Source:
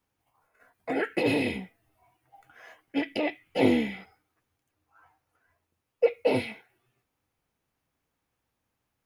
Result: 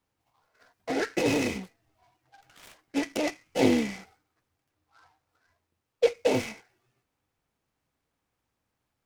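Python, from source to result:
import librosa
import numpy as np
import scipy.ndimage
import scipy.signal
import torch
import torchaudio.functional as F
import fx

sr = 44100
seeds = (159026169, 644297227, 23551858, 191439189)

y = fx.self_delay(x, sr, depth_ms=0.76, at=(1.63, 2.81))
y = fx.noise_mod_delay(y, sr, seeds[0], noise_hz=2900.0, depth_ms=0.042)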